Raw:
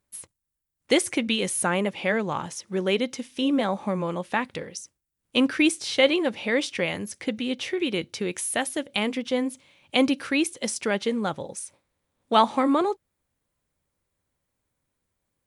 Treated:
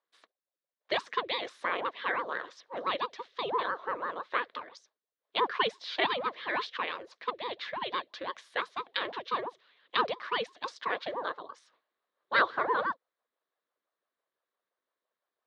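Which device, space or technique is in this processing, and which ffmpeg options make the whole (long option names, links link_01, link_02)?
voice changer toy: -af "aeval=exprs='val(0)*sin(2*PI*430*n/s+430*0.75/5.9*sin(2*PI*5.9*n/s))':channel_layout=same,highpass=490,equalizer=frequency=510:width_type=q:width=4:gain=4,equalizer=frequency=810:width_type=q:width=4:gain=-6,equalizer=frequency=1100:width_type=q:width=4:gain=7,equalizer=frequency=1700:width_type=q:width=4:gain=5,equalizer=frequency=2600:width_type=q:width=4:gain=-5,equalizer=frequency=3800:width_type=q:width=4:gain=5,lowpass=frequency=4200:width=0.5412,lowpass=frequency=4200:width=1.3066,volume=-4.5dB"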